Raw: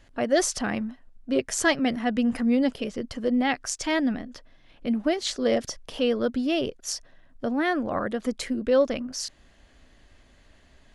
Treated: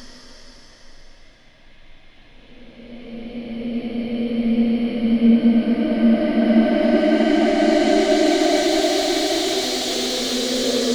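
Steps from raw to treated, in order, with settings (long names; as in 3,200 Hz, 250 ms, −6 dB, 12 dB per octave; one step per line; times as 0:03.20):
extreme stretch with random phases 12×, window 0.50 s, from 0:04.45
slew-rate limiting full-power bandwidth 120 Hz
level +8.5 dB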